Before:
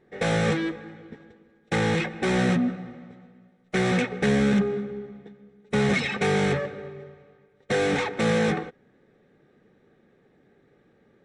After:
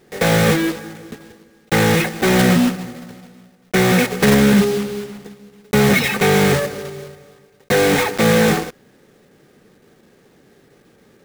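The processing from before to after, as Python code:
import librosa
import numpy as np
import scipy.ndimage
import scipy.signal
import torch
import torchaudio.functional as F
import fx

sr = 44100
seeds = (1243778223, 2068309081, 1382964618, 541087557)

y = fx.block_float(x, sr, bits=3)
y = F.gain(torch.from_numpy(y), 8.5).numpy()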